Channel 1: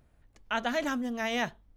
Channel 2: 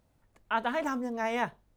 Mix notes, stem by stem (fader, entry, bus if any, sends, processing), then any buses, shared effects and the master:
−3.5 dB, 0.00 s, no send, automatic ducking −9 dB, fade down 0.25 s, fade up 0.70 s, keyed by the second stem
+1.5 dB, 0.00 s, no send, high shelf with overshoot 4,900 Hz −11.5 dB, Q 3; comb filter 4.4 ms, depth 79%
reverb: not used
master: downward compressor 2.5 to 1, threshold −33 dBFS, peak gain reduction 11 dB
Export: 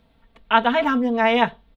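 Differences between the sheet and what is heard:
stem 2 +1.5 dB → +8.0 dB
master: missing downward compressor 2.5 to 1, threshold −33 dBFS, peak gain reduction 11 dB

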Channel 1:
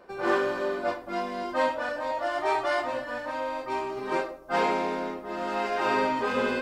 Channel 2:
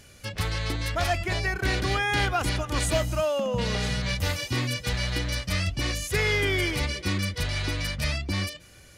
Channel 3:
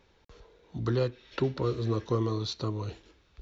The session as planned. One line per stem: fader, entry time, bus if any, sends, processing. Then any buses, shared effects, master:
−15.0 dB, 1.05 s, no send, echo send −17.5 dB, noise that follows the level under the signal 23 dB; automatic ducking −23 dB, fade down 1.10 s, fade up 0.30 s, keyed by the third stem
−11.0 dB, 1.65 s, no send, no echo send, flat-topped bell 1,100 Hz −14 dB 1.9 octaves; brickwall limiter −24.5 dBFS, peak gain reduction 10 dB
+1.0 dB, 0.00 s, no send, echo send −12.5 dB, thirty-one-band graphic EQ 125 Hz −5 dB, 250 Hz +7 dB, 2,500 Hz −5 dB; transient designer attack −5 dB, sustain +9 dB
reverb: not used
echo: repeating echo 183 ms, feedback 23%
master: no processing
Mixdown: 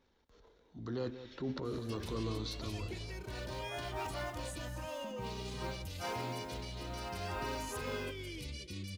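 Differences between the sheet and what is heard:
stem 1: entry 1.05 s → 1.50 s
stem 3 +1.0 dB → −10.0 dB

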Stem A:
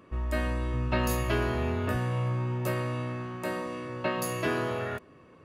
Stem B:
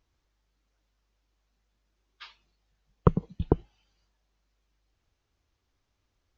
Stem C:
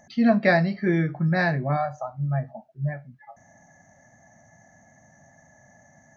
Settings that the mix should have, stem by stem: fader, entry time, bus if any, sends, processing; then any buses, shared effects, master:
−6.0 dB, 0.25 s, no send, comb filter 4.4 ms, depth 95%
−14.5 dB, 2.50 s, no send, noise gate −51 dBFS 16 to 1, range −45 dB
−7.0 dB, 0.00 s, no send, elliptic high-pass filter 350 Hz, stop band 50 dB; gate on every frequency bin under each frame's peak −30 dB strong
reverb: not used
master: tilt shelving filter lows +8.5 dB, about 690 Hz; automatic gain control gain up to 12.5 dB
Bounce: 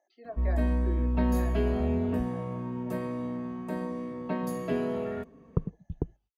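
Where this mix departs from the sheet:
stem C −7.0 dB → −18.0 dB
master: missing automatic gain control gain up to 12.5 dB

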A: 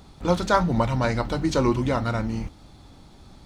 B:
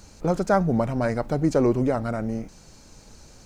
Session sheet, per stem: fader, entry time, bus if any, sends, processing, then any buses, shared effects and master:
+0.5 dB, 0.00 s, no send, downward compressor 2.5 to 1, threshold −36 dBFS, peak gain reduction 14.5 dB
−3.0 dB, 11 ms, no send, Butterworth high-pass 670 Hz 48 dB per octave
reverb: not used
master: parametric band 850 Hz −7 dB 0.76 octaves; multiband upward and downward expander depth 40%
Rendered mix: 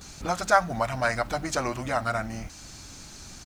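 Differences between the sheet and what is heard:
stem B −3.0 dB → +8.0 dB
master: missing multiband upward and downward expander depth 40%

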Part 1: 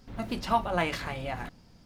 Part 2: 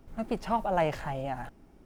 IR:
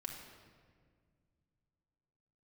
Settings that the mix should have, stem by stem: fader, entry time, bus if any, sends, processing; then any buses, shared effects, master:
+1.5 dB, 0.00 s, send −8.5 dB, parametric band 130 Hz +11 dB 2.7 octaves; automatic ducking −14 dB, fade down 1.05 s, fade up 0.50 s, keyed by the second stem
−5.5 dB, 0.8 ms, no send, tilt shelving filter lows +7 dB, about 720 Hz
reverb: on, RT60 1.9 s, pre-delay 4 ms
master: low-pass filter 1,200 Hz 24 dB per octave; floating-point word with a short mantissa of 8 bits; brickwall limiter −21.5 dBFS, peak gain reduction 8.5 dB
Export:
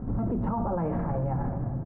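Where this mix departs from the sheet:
stem 1 +1.5 dB → +13.0 dB
stem 2 −5.5 dB → +4.5 dB

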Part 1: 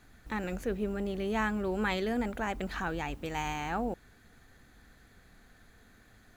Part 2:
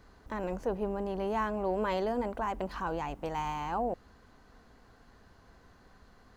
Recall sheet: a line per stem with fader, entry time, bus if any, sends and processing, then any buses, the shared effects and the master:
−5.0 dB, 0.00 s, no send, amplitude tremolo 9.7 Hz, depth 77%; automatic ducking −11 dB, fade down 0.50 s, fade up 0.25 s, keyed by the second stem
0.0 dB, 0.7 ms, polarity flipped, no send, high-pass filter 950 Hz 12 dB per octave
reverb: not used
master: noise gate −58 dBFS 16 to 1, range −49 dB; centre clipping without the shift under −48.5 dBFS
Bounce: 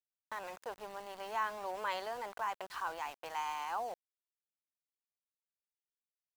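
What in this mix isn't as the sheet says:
stem 1 −5.0 dB → −16.0 dB
stem 2: polarity flipped

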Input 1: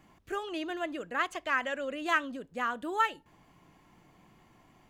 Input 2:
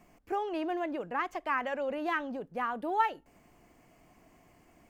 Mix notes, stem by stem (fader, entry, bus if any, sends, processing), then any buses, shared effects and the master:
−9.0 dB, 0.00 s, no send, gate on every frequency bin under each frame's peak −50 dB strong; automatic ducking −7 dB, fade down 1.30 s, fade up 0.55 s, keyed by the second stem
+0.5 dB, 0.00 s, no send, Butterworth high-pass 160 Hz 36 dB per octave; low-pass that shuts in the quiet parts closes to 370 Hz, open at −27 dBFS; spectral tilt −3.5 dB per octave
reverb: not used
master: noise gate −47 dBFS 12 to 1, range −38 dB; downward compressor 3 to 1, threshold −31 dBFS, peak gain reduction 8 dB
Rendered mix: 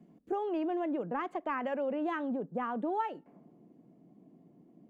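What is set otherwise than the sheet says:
stem 1 −9.0 dB → −16.0 dB
master: missing noise gate −47 dBFS 12 to 1, range −38 dB

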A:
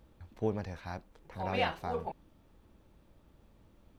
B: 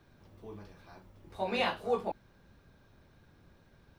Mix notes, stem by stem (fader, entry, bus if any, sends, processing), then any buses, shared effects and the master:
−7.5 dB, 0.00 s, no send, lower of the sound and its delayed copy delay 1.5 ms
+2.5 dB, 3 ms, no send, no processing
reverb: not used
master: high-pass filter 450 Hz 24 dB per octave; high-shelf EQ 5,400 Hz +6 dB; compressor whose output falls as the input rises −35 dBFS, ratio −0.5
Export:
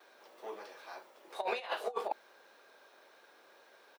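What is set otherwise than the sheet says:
stem A −7.5 dB → −16.0 dB
master: missing high-shelf EQ 5,400 Hz +6 dB

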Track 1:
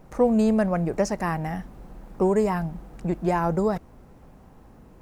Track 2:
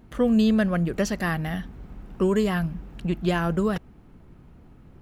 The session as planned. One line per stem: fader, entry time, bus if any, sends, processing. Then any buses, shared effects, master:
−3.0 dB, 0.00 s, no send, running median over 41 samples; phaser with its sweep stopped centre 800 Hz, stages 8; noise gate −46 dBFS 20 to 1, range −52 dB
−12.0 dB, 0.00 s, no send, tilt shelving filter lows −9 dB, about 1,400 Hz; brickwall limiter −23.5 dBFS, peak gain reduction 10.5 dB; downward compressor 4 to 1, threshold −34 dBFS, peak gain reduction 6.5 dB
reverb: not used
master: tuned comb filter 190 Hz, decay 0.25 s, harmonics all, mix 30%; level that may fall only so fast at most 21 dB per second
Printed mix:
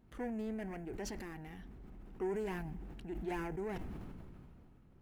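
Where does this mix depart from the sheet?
stem 1 −3.0 dB → −12.0 dB
stem 2: missing tilt shelving filter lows −9 dB, about 1,400 Hz

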